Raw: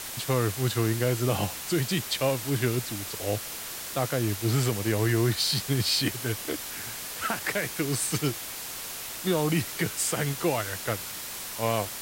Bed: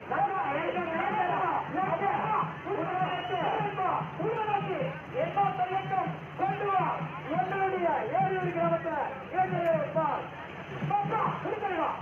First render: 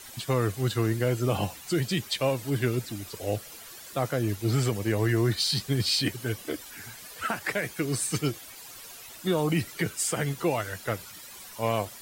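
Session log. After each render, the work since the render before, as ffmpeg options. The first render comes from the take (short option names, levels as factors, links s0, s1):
-af "afftdn=nr=12:nf=-38"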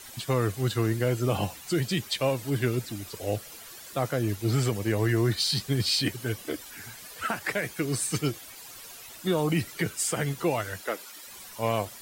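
-filter_complex "[0:a]asettb=1/sr,asplit=3[s0][s1][s2];[s0]atrim=end=10.814[s3];[s1]atrim=start=10.81:end=11.27,asetpts=PTS-STARTPTS,afade=t=in:d=0.004:c=qsin,afade=t=out:st=0.456:d=0.004:c=qsin,highpass=f=260:w=0.5412,highpass=f=260:w=1.3066[s4];[s2]atrim=start=11.266[s5];[s3][s4]acrossfade=d=0.004:c1=hsin:c2=qsin[s6];[s6][s5]acrossfade=d=0.004:c1=qsin:c2=hsin"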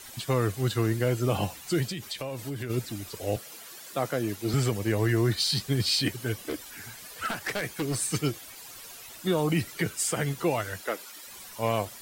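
-filter_complex "[0:a]asplit=3[s0][s1][s2];[s0]afade=t=out:st=1.89:d=0.02[s3];[s1]acompressor=threshold=0.0316:ratio=12:attack=3.2:release=140:knee=1:detection=peak,afade=t=in:st=1.89:d=0.02,afade=t=out:st=2.69:d=0.02[s4];[s2]afade=t=in:st=2.69:d=0.02[s5];[s3][s4][s5]amix=inputs=3:normalize=0,asettb=1/sr,asplit=3[s6][s7][s8];[s6]atrim=end=3.364[s9];[s7]atrim=start=3.36:end=4.54,asetpts=PTS-STARTPTS,afade=t=in:d=0.004:c=qsin,afade=t=out:st=1.176:d=0.004:c=qsin,highpass=160[s10];[s8]atrim=start=4.536[s11];[s9][s10]acrossfade=d=0.004:c1=hsin:c2=qsin[s12];[s12][s11]acrossfade=d=0.004:c1=qsin:c2=hsin,asplit=3[s13][s14][s15];[s13]afade=t=out:st=6.42:d=0.02[s16];[s14]aeval=exprs='0.0708*(abs(mod(val(0)/0.0708+3,4)-2)-1)':c=same,afade=t=in:st=6.42:d=0.02,afade=t=out:st=7.98:d=0.02[s17];[s15]afade=t=in:st=7.98:d=0.02[s18];[s16][s17][s18]amix=inputs=3:normalize=0"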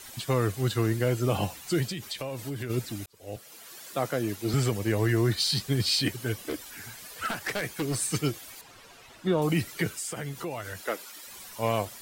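-filter_complex "[0:a]asettb=1/sr,asplit=3[s0][s1][s2];[s0]atrim=end=8.614[s3];[s1]atrim=start=8.61:end=9.42,asetpts=PTS-STARTPTS,afade=t=in:d=0.004:c=qsin,afade=t=out:st=0.806:d=0.004:c=qsin,aemphasis=mode=reproduction:type=75fm[s4];[s2]atrim=start=9.416[s5];[s3][s4]acrossfade=d=0.004:c1=hsin:c2=qsin[s6];[s6][s5]acrossfade=d=0.004:c1=qsin:c2=hsin,asettb=1/sr,asplit=3[s7][s8][s9];[s7]atrim=end=9.984[s10];[s8]atrim=start=9.98:end=10.81,asetpts=PTS-STARTPTS,afade=t=in:d=0.004:c=qsin,afade=t=out:st=0.826:d=0.004:c=qsin,acompressor=threshold=0.02:ratio=2.5:attack=3.2:release=140:knee=1:detection=peak[s11];[s9]atrim=start=10.806[s12];[s10][s11]acrossfade=d=0.004:c1=hsin:c2=qsin[s13];[s13][s12]acrossfade=d=0.004:c1=qsin:c2=hsin,asplit=2[s14][s15];[s14]atrim=end=3.06,asetpts=PTS-STARTPTS,afade=t=out:st=3.056:d=0.004:c=hsin[s16];[s15]atrim=start=3.06,asetpts=PTS-STARTPTS,afade=t=in:d=0.76[s17];[s16][s17]concat=n=2:v=0:a=1"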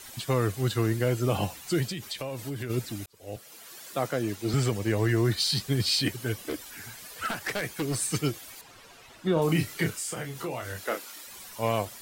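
-filter_complex "[0:a]asettb=1/sr,asplit=3[s0][s1][s2];[s0]atrim=end=4.074[s3];[s1]atrim=start=4.07:end=5.25,asetpts=PTS-STARTPTS,afade=t=in:d=0.004:c=qsin,afade=t=out:st=1.176:d=0.004:c=qsin,equalizer=f=12000:t=o:w=0.24:g=-9.5[s4];[s2]atrim=start=5.246[s5];[s3][s4]acrossfade=d=0.004:c1=hsin:c2=qsin[s6];[s6][s5]acrossfade=d=0.004:c1=qsin:c2=hsin,asettb=1/sr,asplit=3[s7][s8][s9];[s7]atrim=end=9.334[s10];[s8]atrim=start=9.33:end=11.23,asetpts=PTS-STARTPTS,afade=t=in:d=0.004:c=qsin,afade=t=out:st=1.896:d=0.004:c=qsin,asplit=2[s11][s12];[s12]adelay=31,volume=0.531[s13];[s11][s13]amix=inputs=2:normalize=0,atrim=end_sample=83790[s14];[s9]atrim=start=11.226[s15];[s10][s14]acrossfade=d=0.004:c1=hsin:c2=qsin[s16];[s16][s15]acrossfade=d=0.004:c1=qsin:c2=hsin"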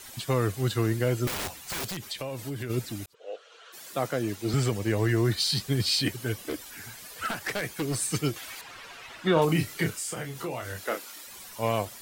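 -filter_complex "[0:a]asettb=1/sr,asplit=3[s0][s1][s2];[s0]atrim=end=1.274[s3];[s1]atrim=start=1.27:end=1.97,asetpts=PTS-STARTPTS,afade=t=in:d=0.004:c=qsin,afade=t=out:st=0.696:d=0.004:c=qsin,aeval=exprs='(mod(23.7*val(0)+1,2)-1)/23.7':c=same[s4];[s2]atrim=start=1.966[s5];[s3][s4]acrossfade=d=0.004:c1=hsin:c2=qsin[s6];[s6][s5]acrossfade=d=0.004:c1=qsin:c2=hsin,asplit=3[s7][s8][s9];[s7]afade=t=out:st=3.13:d=0.02[s10];[s8]highpass=f=460:w=0.5412,highpass=f=460:w=1.3066,equalizer=f=460:t=q:w=4:g=8,equalizer=f=850:t=q:w=4:g=-4,equalizer=f=1400:t=q:w=4:g=8,equalizer=f=2100:t=q:w=4:g=-5,equalizer=f=3100:t=q:w=4:g=4,equalizer=f=5000:t=q:w=4:g=-9,lowpass=f=5300:w=0.5412,lowpass=f=5300:w=1.3066,afade=t=in:st=3.13:d=0.02,afade=t=out:st=3.72:d=0.02[s11];[s9]afade=t=in:st=3.72:d=0.02[s12];[s10][s11][s12]amix=inputs=3:normalize=0,asettb=1/sr,asplit=3[s13][s14][s15];[s13]atrim=end=8.364[s16];[s14]atrim=start=8.36:end=9.45,asetpts=PTS-STARTPTS,afade=t=in:d=0.004:c=qsin,afade=t=out:st=1.086:d=0.004:c=qsin,equalizer=f=1900:w=0.44:g=9.5[s17];[s15]atrim=start=9.446[s18];[s16][s17]acrossfade=d=0.004:c1=hsin:c2=qsin[s19];[s19][s18]acrossfade=d=0.004:c1=qsin:c2=hsin"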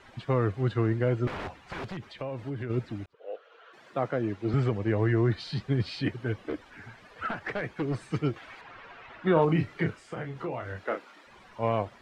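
-af "lowpass=1900"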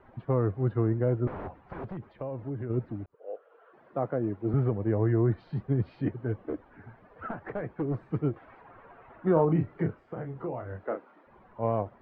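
-af "lowpass=1000"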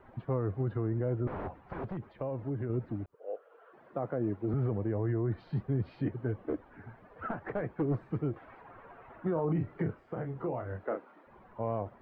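-af "alimiter=limit=0.0708:level=0:latency=1:release=53"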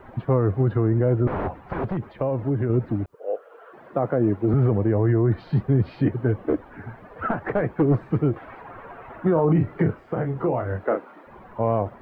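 -af "volume=3.76"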